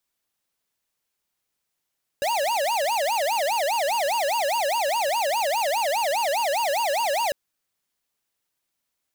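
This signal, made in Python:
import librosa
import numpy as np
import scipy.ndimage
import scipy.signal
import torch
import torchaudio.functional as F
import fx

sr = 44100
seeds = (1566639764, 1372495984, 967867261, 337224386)

y = fx.siren(sr, length_s=5.1, kind='wail', low_hz=550.0, high_hz=952.0, per_s=4.9, wave='square', level_db=-23.5)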